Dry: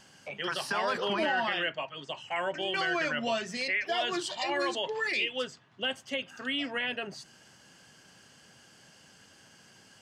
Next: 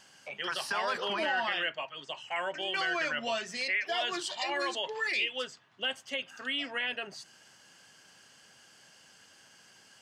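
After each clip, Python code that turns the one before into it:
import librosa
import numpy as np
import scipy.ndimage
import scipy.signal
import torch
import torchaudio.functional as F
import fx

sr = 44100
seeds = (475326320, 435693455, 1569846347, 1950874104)

y = fx.low_shelf(x, sr, hz=400.0, db=-10.0)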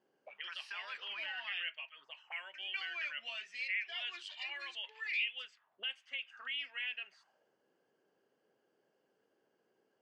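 y = fx.auto_wah(x, sr, base_hz=330.0, top_hz=2500.0, q=3.1, full_db=-35.5, direction='up')
y = y * librosa.db_to_amplitude(-2.5)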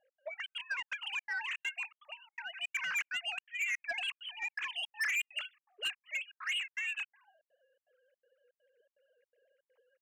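y = fx.sine_speech(x, sr)
y = 10.0 ** (-38.0 / 20.0) * np.tanh(y / 10.0 ** (-38.0 / 20.0))
y = fx.step_gate(y, sr, bpm=164, pattern='x.xxx.xx', floor_db=-60.0, edge_ms=4.5)
y = y * librosa.db_to_amplitude(8.5)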